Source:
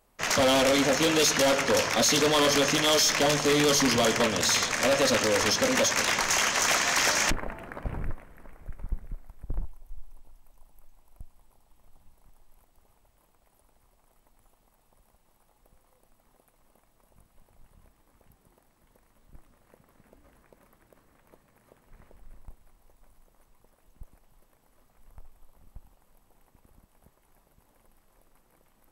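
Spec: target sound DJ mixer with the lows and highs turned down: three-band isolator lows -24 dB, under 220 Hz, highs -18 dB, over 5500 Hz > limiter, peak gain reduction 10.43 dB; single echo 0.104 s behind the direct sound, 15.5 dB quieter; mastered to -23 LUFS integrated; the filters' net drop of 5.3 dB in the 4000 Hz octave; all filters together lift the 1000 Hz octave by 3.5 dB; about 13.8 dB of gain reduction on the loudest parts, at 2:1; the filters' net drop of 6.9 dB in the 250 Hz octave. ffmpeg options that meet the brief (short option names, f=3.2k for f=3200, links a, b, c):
-filter_complex "[0:a]equalizer=f=250:t=o:g=-5,equalizer=f=1k:t=o:g=5,equalizer=f=4k:t=o:g=-5,acompressor=threshold=-46dB:ratio=2,acrossover=split=220 5500:gain=0.0631 1 0.126[a][b][c];[a][b][c]amix=inputs=3:normalize=0,aecho=1:1:104:0.168,volume=21.5dB,alimiter=limit=-15dB:level=0:latency=1"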